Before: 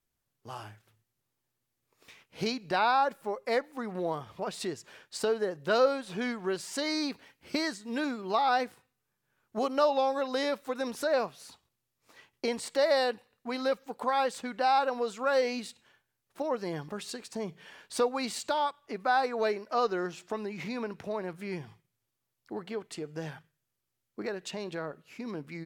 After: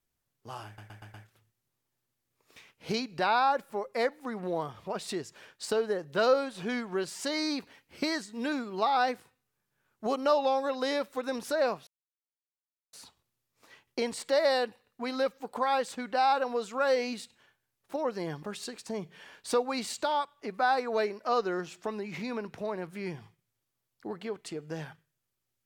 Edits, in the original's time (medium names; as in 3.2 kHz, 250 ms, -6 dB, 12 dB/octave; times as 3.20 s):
0.66 s: stutter 0.12 s, 5 plays
11.39 s: insert silence 1.06 s